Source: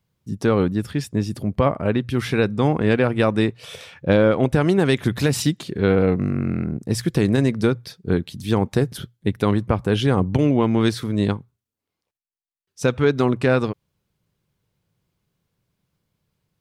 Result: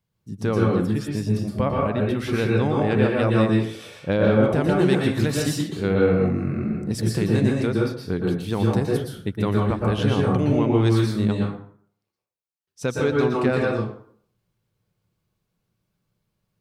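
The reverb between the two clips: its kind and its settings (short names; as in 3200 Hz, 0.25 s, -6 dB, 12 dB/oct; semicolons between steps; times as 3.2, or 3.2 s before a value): plate-style reverb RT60 0.57 s, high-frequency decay 0.65×, pre-delay 0.105 s, DRR -2 dB; gain -6 dB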